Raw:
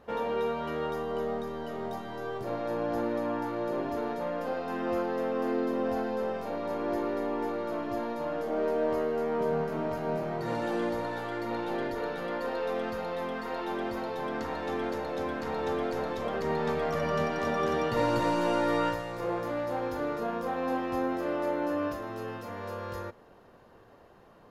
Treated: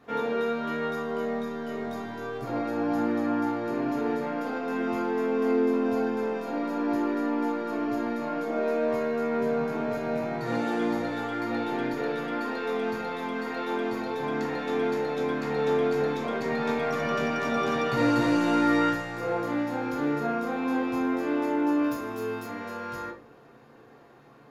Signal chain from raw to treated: 21.84–22.47 high shelf 8800 Hz +12 dB; reverb RT60 0.40 s, pre-delay 3 ms, DRR -3 dB

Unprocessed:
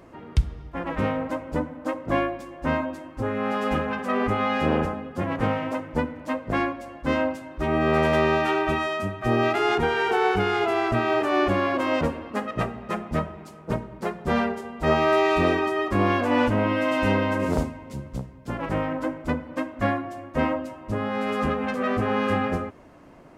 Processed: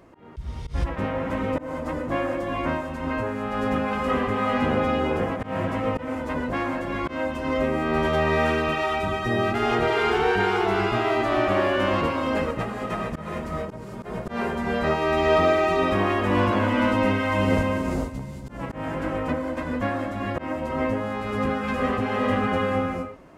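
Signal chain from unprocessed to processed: non-linear reverb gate 0.48 s rising, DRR -1.5 dB; auto swell 0.126 s; gain -3 dB

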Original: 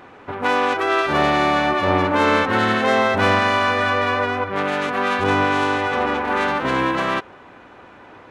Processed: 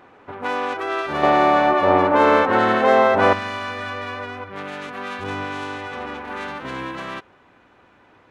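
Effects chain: bell 640 Hz +2.5 dB 2.9 oct, from 1.23 s +12 dB, from 3.33 s -3.5 dB; gain -7.5 dB

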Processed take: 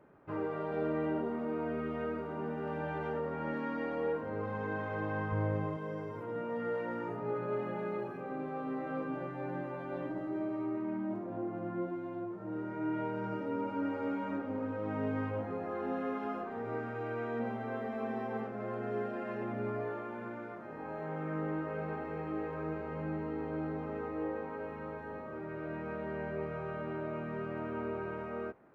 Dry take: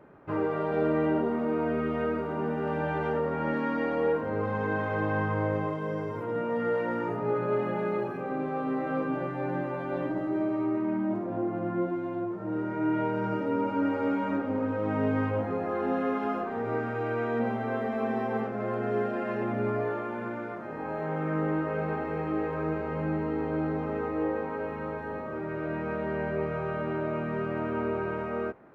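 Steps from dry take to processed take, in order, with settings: 5.32–5.77 low shelf 140 Hz +10.5 dB; gain -7.5 dB

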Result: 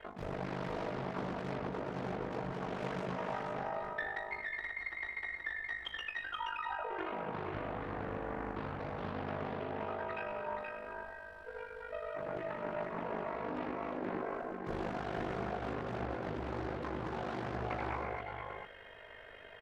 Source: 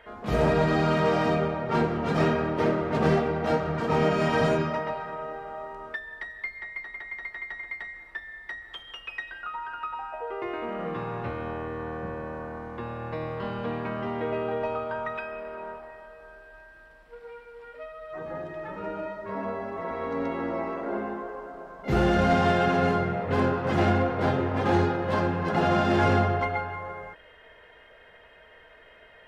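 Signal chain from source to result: reverse; compressor 16:1, threshold -35 dBFS, peak gain reduction 18 dB; reverse; time stretch by phase-locked vocoder 0.67×; doubler 14 ms -12.5 dB; ring modulator 25 Hz; on a send: echo 0.475 s -4 dB; on the sum: Doppler distortion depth 0.56 ms; gain +2 dB

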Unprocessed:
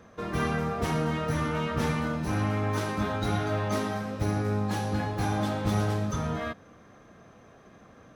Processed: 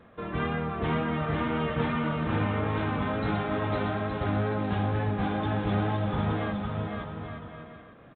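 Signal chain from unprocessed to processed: wow and flutter 35 cents; bouncing-ball echo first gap 0.51 s, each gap 0.7×, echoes 5; gain -1.5 dB; µ-law 64 kbps 8000 Hz

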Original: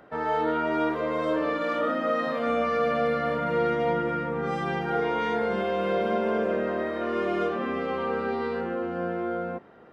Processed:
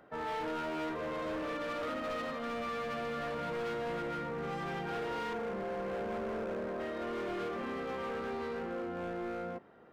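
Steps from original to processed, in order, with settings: 2.3–3.18 bell 530 Hz -4.5 dB 1.1 oct; 5.33–6.8 Bessel low-pass 1200 Hz; hard clip -27.5 dBFS, distortion -9 dB; gain -7 dB

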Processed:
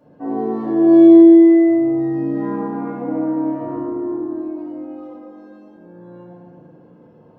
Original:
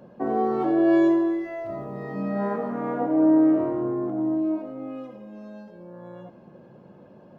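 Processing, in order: FDN reverb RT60 2.2 s, low-frequency decay 1.35×, high-frequency decay 0.4×, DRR -8 dB; gain -8.5 dB

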